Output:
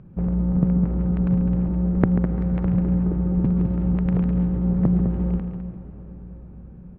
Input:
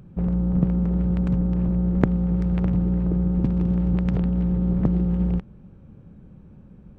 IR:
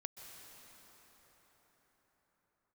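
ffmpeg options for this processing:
-filter_complex "[0:a]lowpass=2.3k,aecho=1:1:205|213:0.335|0.15,asplit=2[a][b];[1:a]atrim=start_sample=2205,adelay=139[c];[b][c]afir=irnorm=-1:irlink=0,volume=-6dB[d];[a][d]amix=inputs=2:normalize=0"

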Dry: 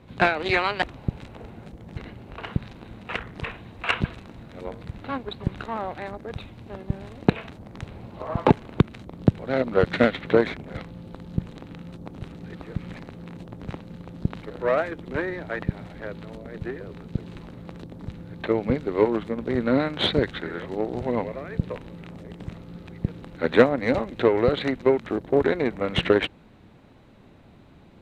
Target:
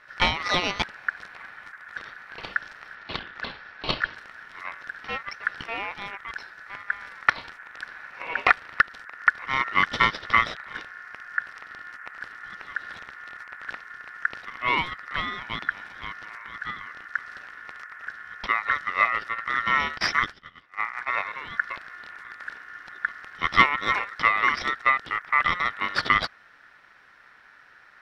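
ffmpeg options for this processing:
-filter_complex "[0:a]asettb=1/sr,asplit=3[a][b][c];[a]atrim=end=2.954[d];[b]atrim=start=2.95:end=4.16,asetpts=PTS-STARTPTS,afade=t=in:d=0.004:c=qsin,afade=t=out:st=1.206:d=0.004:c=qsin,lowpass=3.6k[e];[c]atrim=start=4.156[f];[d][e]acrossfade=d=0.004:c1=hsin:c2=qsin[g];[g][f]acrossfade=d=0.004:c1=qsin:c2=hsin,aeval=exprs='val(0)*sin(2*PI*1600*n/s)':c=same,asettb=1/sr,asplit=3[h][i][j];[h]atrim=end=19.984[k];[i]atrim=start=19.98:end=21.08,asetpts=PTS-STARTPTS,afade=t=in:d=0.004:c=qsin,afade=t=out:st=1.096:d=0.004:c=qsin,agate=range=-23dB:threshold=-31dB:ratio=16:detection=peak[l];[j]atrim=start=21.076[m];[k][l]acrossfade=d=0.004:c1=hsin:c2=qsin[n];[n][m]acrossfade=d=0.004:c1=qsin:c2=hsin,volume=1dB"

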